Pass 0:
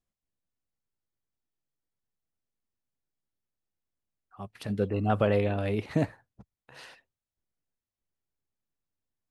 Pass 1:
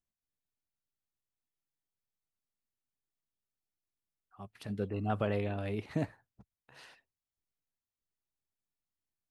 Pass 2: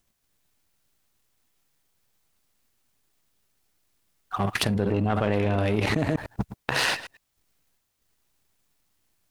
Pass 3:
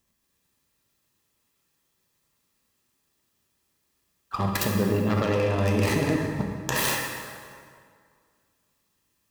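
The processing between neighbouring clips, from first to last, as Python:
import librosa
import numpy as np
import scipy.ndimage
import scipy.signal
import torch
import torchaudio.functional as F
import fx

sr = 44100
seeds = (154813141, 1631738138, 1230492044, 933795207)

y1 = fx.peak_eq(x, sr, hz=520.0, db=-4.0, octaves=0.23)
y1 = y1 * 10.0 ** (-6.5 / 20.0)
y2 = fx.reverse_delay(y1, sr, ms=101, wet_db=-11.5)
y2 = fx.power_curve(y2, sr, exponent=1.4)
y2 = fx.env_flatten(y2, sr, amount_pct=100)
y2 = y2 * 10.0 ** (7.0 / 20.0)
y3 = fx.tracing_dist(y2, sr, depth_ms=0.4)
y3 = fx.notch_comb(y3, sr, f0_hz=730.0)
y3 = fx.rev_plate(y3, sr, seeds[0], rt60_s=2.1, hf_ratio=0.7, predelay_ms=0, drr_db=1.5)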